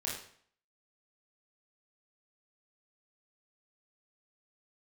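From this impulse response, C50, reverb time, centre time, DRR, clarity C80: 4.0 dB, 0.55 s, 42 ms, -5.5 dB, 8.0 dB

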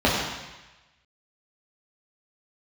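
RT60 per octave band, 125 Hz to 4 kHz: 1.1 s, 0.95 s, 1.0 s, 1.1 s, 1.2 s, 1.2 s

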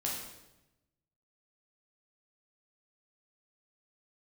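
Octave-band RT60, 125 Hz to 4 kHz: 1.4 s, 1.2 s, 1.0 s, 0.90 s, 0.85 s, 0.80 s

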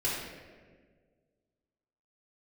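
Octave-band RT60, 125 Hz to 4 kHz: 2.1 s, 1.9 s, 1.9 s, 1.3 s, 1.3 s, 0.95 s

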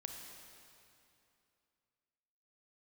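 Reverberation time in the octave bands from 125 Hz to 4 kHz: 2.8 s, 2.9 s, 2.7 s, 2.7 s, 2.5 s, 2.3 s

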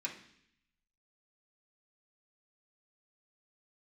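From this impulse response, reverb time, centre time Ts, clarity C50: 0.65 s, 18 ms, 9.0 dB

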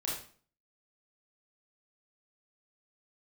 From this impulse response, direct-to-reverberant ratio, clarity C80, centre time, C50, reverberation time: -5.5 dB, 7.5 dB, 45 ms, 2.5 dB, 0.45 s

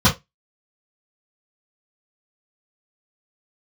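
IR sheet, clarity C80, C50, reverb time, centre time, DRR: 25.0 dB, 13.5 dB, 0.20 s, 19 ms, -11.5 dB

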